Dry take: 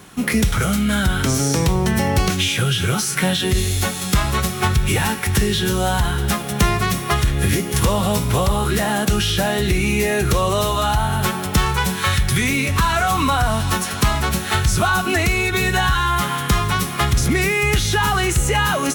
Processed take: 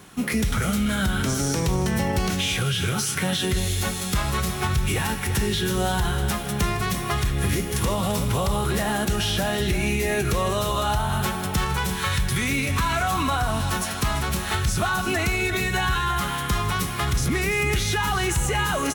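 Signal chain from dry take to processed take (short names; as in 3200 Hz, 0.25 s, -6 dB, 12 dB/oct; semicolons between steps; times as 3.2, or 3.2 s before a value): limiter -11 dBFS, peak gain reduction 4 dB; tapped delay 0.157/0.341 s -17.5/-11.5 dB; gain -4 dB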